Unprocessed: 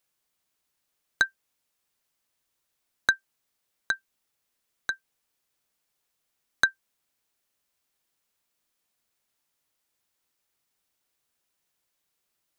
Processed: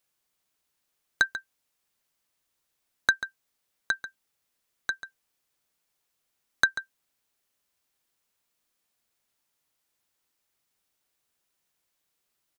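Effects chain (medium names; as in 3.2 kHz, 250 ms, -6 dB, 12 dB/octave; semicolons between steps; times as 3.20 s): echo from a far wall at 24 m, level -12 dB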